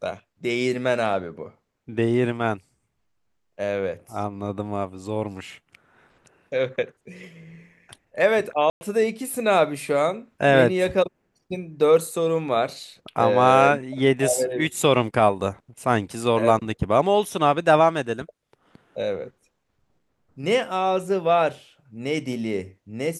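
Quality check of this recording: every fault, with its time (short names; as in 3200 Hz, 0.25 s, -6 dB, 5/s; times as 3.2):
8.7–8.81 gap 0.11 s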